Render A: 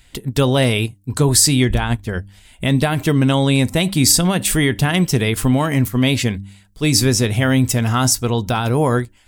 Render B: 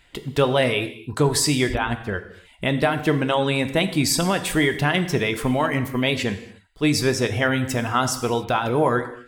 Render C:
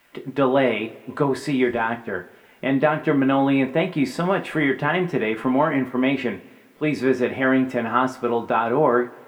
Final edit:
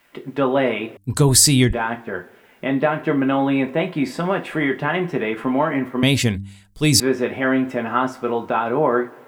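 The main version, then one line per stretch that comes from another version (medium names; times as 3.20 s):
C
0.97–1.73 s: from A
6.03–7.00 s: from A
not used: B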